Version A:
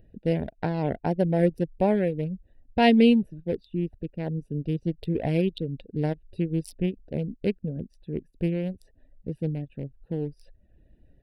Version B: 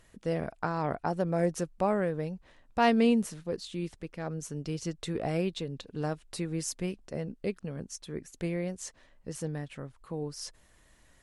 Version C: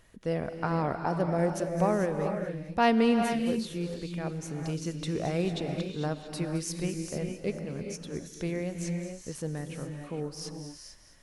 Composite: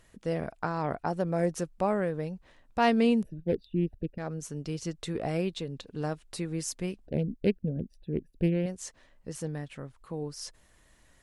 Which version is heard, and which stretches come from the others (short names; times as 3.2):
B
3.23–4.18 from A
7.07–8.66 from A
not used: C